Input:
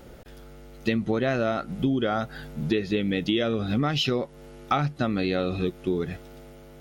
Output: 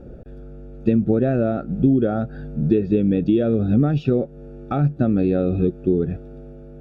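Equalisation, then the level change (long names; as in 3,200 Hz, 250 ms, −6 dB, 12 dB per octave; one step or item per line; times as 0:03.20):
moving average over 43 samples
+9.0 dB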